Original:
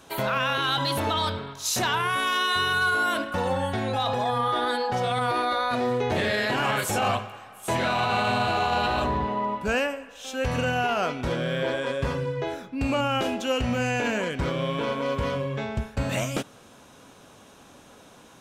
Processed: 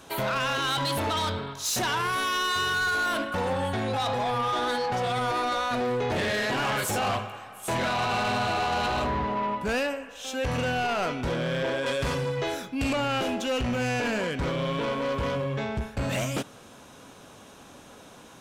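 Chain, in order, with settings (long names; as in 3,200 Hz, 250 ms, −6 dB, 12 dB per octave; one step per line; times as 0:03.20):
soft clipping −25 dBFS, distortion −12 dB
0:11.86–0:12.93: high-shelf EQ 2,800 Hz +10.5 dB
level +2 dB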